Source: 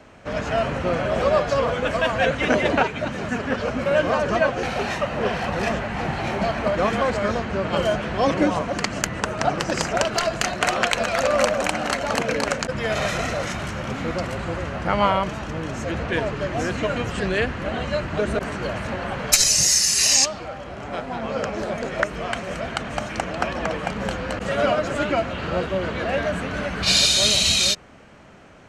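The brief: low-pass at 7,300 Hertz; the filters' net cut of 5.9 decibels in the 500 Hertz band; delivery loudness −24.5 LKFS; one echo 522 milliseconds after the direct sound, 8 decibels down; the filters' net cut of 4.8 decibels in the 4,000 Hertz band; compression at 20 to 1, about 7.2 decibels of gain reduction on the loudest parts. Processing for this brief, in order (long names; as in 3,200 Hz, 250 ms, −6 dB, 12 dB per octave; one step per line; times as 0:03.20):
low-pass filter 7,300 Hz
parametric band 500 Hz −7.5 dB
parametric band 4,000 Hz −5.5 dB
downward compressor 20 to 1, threshold −24 dBFS
single-tap delay 522 ms −8 dB
level +4.5 dB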